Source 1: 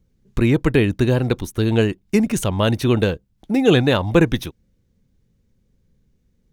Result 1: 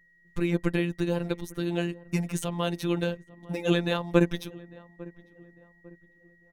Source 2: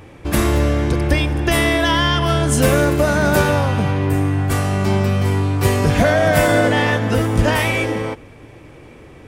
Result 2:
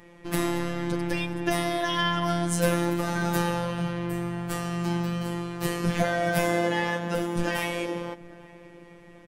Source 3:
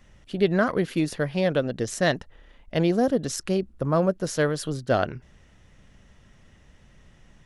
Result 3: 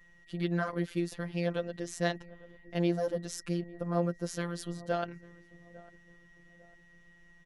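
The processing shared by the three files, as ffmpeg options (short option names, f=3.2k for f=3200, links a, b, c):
-filter_complex "[0:a]asplit=2[a][b];[b]adelay=850,lowpass=f=1k:p=1,volume=-20dB,asplit=2[c][d];[d]adelay=850,lowpass=f=1k:p=1,volume=0.43,asplit=2[e][f];[f]adelay=850,lowpass=f=1k:p=1,volume=0.43[g];[a][c][e][g]amix=inputs=4:normalize=0,afftfilt=real='hypot(re,im)*cos(PI*b)':imag='0':win_size=1024:overlap=0.75,aeval=exprs='val(0)+0.002*sin(2*PI*1900*n/s)':c=same,volume=-6dB"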